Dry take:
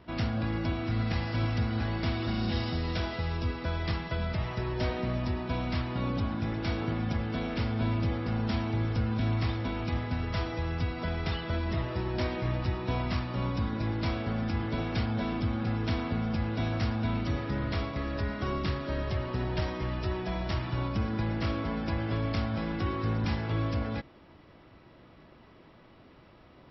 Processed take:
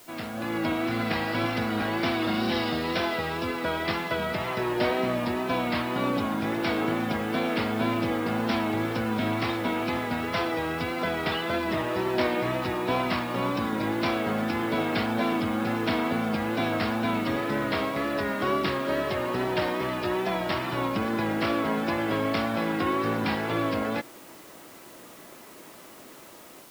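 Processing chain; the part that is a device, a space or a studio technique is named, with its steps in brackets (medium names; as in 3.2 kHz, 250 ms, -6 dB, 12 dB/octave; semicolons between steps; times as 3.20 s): dictaphone (band-pass 270–4000 Hz; level rider gain up to 9 dB; wow and flutter; white noise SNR 24 dB)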